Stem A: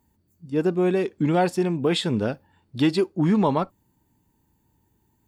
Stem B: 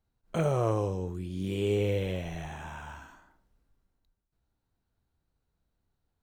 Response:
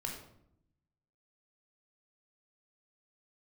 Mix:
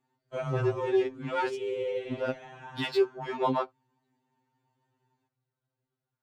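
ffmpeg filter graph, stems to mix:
-filter_complex "[0:a]highpass=f=570:p=1,highshelf=f=8.8k:g=-10,volume=1dB,asplit=3[a][b][c];[a]atrim=end=1.56,asetpts=PTS-STARTPTS,afade=t=out:st=1.556:d=0.004:c=hsin[d];[b]atrim=start=1.56:end=2.11,asetpts=PTS-STARTPTS,volume=0[e];[c]atrim=start=2.11,asetpts=PTS-STARTPTS,afade=t=in:d=0.004:c=hsin[f];[d][e][f]concat=n=3:v=0:a=1[g];[1:a]highpass=75,highshelf=f=9.3k:g=-7.5,flanger=delay=0.8:depth=6.9:regen=-47:speed=1.3:shape=sinusoidal,volume=1.5dB,asplit=2[h][i];[i]volume=-10.5dB[j];[2:a]atrim=start_sample=2205[k];[j][k]afir=irnorm=-1:irlink=0[l];[g][h][l]amix=inputs=3:normalize=0,adynamicsmooth=sensitivity=4:basefreq=5.1k,afftfilt=real='re*2.45*eq(mod(b,6),0)':imag='im*2.45*eq(mod(b,6),0)':win_size=2048:overlap=0.75"

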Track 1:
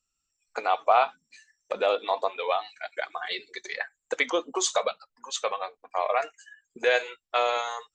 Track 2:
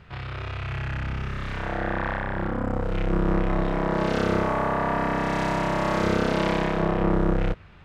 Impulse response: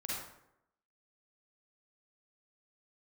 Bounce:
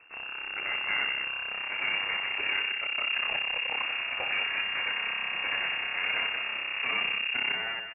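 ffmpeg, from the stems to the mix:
-filter_complex "[0:a]alimiter=limit=-19dB:level=0:latency=1:release=33,asoftclip=type=tanh:threshold=-24.5dB,acrusher=bits=5:mix=0:aa=0.000001,volume=0dB,asplit=3[a][b][c];[b]volume=-6.5dB[d];[c]volume=-6dB[e];[1:a]alimiter=limit=-18.5dB:level=0:latency=1:release=330,volume=-2dB[f];[2:a]atrim=start_sample=2205[g];[d][g]afir=irnorm=-1:irlink=0[h];[e]aecho=0:1:196:1[i];[a][f][h][i]amix=inputs=4:normalize=0,aeval=exprs='max(val(0),0)':c=same,lowpass=f=2.4k:t=q:w=0.5098,lowpass=f=2.4k:t=q:w=0.6013,lowpass=f=2.4k:t=q:w=0.9,lowpass=f=2.4k:t=q:w=2.563,afreqshift=-2800"

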